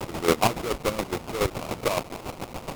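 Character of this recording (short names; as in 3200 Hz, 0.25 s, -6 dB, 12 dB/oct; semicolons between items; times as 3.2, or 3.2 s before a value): a quantiser's noise floor 6-bit, dither triangular; chopped level 7.1 Hz, depth 65%, duty 35%; aliases and images of a low sample rate 1700 Hz, jitter 20%; Vorbis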